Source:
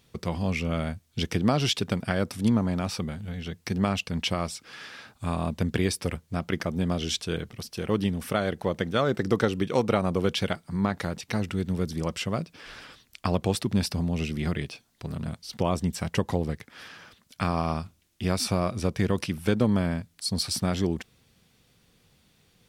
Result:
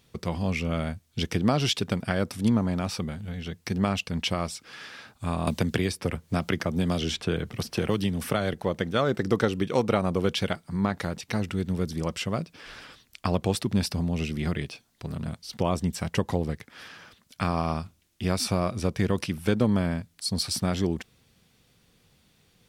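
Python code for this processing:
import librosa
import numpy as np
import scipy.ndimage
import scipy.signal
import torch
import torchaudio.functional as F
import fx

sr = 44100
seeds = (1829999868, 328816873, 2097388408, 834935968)

y = fx.band_squash(x, sr, depth_pct=100, at=(5.47, 8.54))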